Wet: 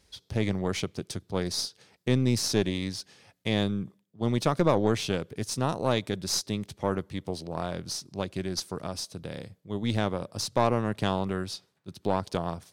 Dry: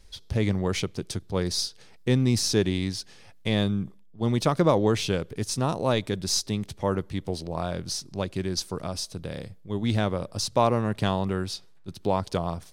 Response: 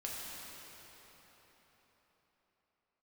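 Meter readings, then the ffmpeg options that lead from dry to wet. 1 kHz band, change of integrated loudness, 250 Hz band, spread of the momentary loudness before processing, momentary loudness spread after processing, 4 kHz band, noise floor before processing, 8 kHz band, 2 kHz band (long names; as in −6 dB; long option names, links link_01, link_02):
−2.0 dB, −2.5 dB, −2.5 dB, 11 LU, 11 LU, −2.5 dB, −50 dBFS, −3.0 dB, −1.5 dB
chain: -af "highpass=87,aeval=exprs='(tanh(4.47*val(0)+0.6)-tanh(0.6))/4.47':channel_layout=same"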